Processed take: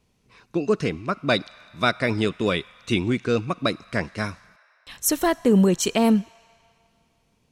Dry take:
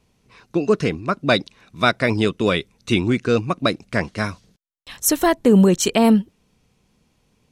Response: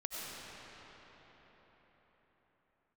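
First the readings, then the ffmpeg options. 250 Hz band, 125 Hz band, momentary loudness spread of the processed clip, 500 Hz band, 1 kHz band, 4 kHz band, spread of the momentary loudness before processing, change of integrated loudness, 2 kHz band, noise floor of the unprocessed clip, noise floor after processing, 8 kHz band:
-4.0 dB, -4.0 dB, 11 LU, -4.0 dB, -4.0 dB, -3.5 dB, 10 LU, -4.0 dB, -4.0 dB, -65 dBFS, -67 dBFS, -3.5 dB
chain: -filter_complex "[0:a]asplit=2[a][b];[b]highpass=f=780:w=0.5412,highpass=f=780:w=1.3066[c];[1:a]atrim=start_sample=2205,asetrate=88200,aresample=44100[d];[c][d]afir=irnorm=-1:irlink=0,volume=-15dB[e];[a][e]amix=inputs=2:normalize=0,volume=-4dB"

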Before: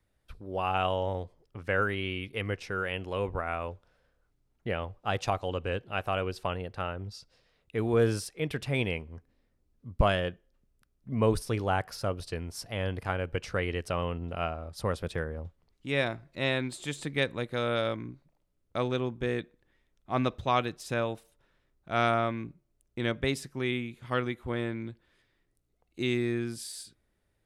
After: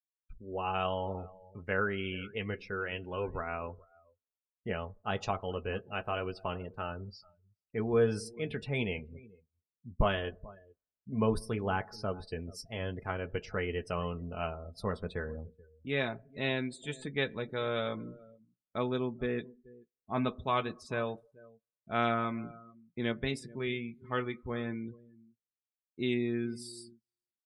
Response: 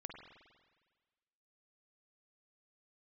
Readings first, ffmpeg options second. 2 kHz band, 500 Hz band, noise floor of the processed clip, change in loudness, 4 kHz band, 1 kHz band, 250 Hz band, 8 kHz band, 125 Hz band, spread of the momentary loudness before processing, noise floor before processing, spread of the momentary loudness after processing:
-3.5 dB, -3.5 dB, under -85 dBFS, -3.5 dB, -4.5 dB, -4.0 dB, -2.0 dB, -8.0 dB, -5.0 dB, 13 LU, -74 dBFS, 15 LU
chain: -filter_complex "[0:a]agate=range=-33dB:threshold=-55dB:ratio=3:detection=peak,equalizer=f=610:w=4.3:g=-2.5,flanger=delay=7.6:depth=2.8:regen=-56:speed=0.31:shape=sinusoidal,aecho=1:1:4.7:0.34,asplit=2[a][b];[b]adelay=431.5,volume=-20dB,highshelf=f=4k:g=-9.71[c];[a][c]amix=inputs=2:normalize=0,asplit=2[d][e];[1:a]atrim=start_sample=2205,lowpass=1.6k[f];[e][f]afir=irnorm=-1:irlink=0,volume=-13dB[g];[d][g]amix=inputs=2:normalize=0,afftdn=nr=28:nf=-48"

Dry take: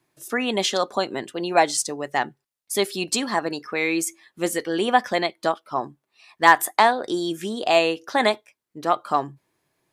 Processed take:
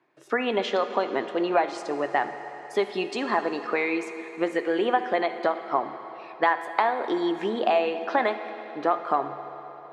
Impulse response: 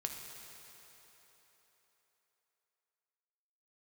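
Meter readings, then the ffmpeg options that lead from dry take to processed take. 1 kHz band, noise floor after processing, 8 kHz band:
-3.5 dB, -43 dBFS, under -20 dB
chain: -filter_complex "[0:a]acompressor=threshold=-25dB:ratio=5,highpass=310,lowpass=2.1k,asplit=2[a][b];[1:a]atrim=start_sample=2205[c];[b][c]afir=irnorm=-1:irlink=0,volume=1dB[d];[a][d]amix=inputs=2:normalize=0"

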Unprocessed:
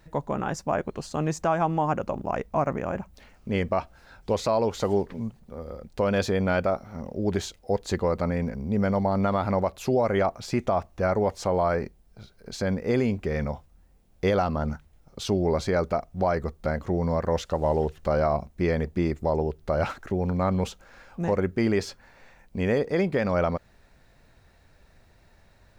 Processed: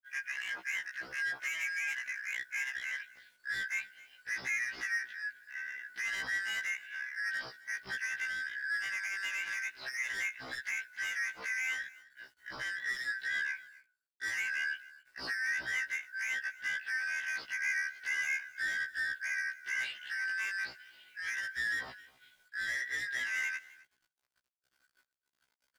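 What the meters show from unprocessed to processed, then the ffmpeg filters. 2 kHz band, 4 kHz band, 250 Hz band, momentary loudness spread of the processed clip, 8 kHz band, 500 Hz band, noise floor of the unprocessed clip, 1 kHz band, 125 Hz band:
+6.5 dB, -2.5 dB, -35.5 dB, 8 LU, -2.0 dB, -36.0 dB, -58 dBFS, -23.5 dB, under -35 dB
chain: -filter_complex "[0:a]afftfilt=real='real(if(lt(b,272),68*(eq(floor(b/68),0)*3+eq(floor(b/68),1)*0+eq(floor(b/68),2)*1+eq(floor(b/68),3)*2)+mod(b,68),b),0)':imag='imag(if(lt(b,272),68*(eq(floor(b/68),0)*3+eq(floor(b/68),1)*0+eq(floor(b/68),2)*1+eq(floor(b/68),3)*2)+mod(b,68),b),0)':win_size=2048:overlap=0.75,agate=range=-33dB:threshold=-43dB:ratio=3:detection=peak,lowshelf=f=82:g=-10,aresample=11025,aresample=44100,asplit=2[a][b];[b]acompressor=threshold=-33dB:ratio=6,volume=2dB[c];[a][c]amix=inputs=2:normalize=0,acrusher=bits=9:mix=0:aa=0.000001,asoftclip=type=tanh:threshold=-22.5dB,equalizer=f=210:t=o:w=0.35:g=-2.5,aecho=1:1:262:0.0841,afftfilt=real='re*1.73*eq(mod(b,3),0)':imag='im*1.73*eq(mod(b,3),0)':win_size=2048:overlap=0.75,volume=-7dB"

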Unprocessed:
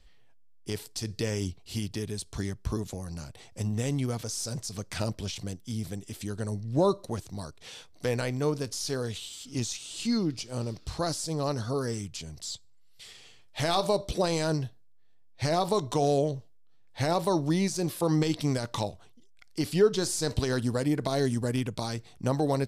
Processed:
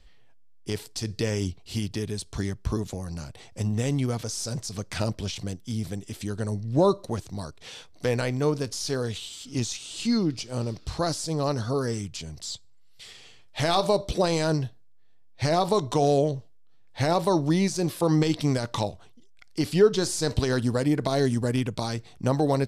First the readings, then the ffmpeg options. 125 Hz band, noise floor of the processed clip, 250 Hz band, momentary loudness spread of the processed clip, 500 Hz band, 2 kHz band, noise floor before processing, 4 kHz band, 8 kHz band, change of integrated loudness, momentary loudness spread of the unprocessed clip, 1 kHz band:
+3.5 dB, -50 dBFS, +3.5 dB, 13 LU, +3.5 dB, +3.5 dB, -53 dBFS, +2.5 dB, +1.5 dB, +3.5 dB, 12 LU, +3.5 dB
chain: -af "highshelf=f=9.8k:g=-7,volume=3.5dB"

